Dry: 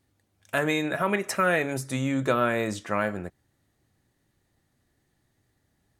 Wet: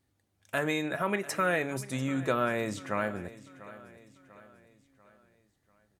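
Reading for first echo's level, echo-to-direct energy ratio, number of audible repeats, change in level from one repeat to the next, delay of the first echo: -17.5 dB, -16.5 dB, 3, -6.5 dB, 0.693 s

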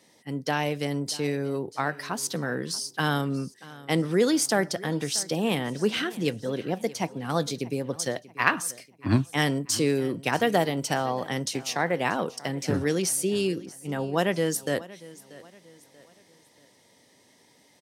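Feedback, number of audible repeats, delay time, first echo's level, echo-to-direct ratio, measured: 40%, 2, 0.635 s, -19.5 dB, -19.0 dB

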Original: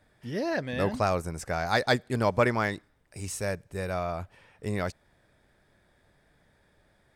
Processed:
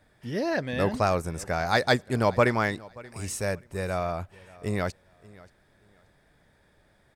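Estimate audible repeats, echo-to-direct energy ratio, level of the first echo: 2, -22.0 dB, -22.0 dB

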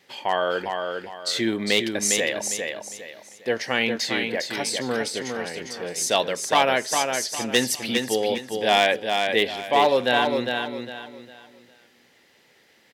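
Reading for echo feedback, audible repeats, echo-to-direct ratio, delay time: 31%, 3, -4.5 dB, 0.405 s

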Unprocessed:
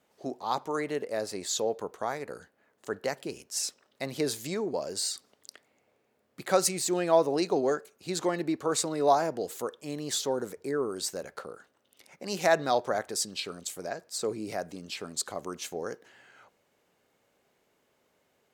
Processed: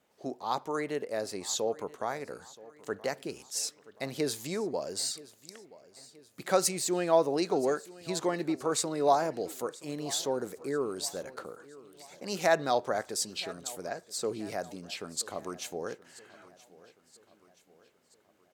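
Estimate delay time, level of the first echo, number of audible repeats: 0.976 s, -20.0 dB, 3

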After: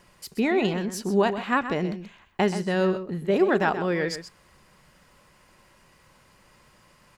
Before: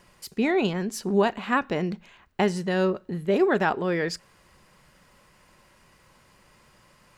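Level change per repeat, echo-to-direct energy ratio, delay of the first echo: no steady repeat, -11.0 dB, 0.128 s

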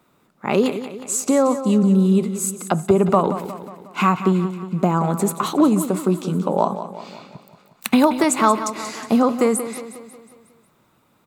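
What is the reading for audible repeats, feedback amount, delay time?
5, 52%, 0.181 s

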